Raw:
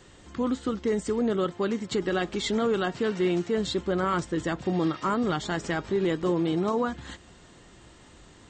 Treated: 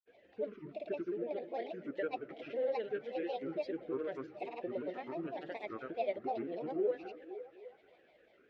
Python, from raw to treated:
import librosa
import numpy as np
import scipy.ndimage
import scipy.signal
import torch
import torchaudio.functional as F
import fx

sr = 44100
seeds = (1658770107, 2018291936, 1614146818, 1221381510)

y = fx.vowel_filter(x, sr, vowel='e')
y = fx.hum_notches(y, sr, base_hz=60, count=4)
y = fx.granulator(y, sr, seeds[0], grain_ms=100.0, per_s=20.0, spray_ms=100.0, spread_st=7)
y = fx.air_absorb(y, sr, metres=140.0)
y = fx.echo_stepped(y, sr, ms=257, hz=240.0, octaves=0.7, feedback_pct=70, wet_db=-10)
y = F.gain(torch.from_numpy(y), 1.5).numpy()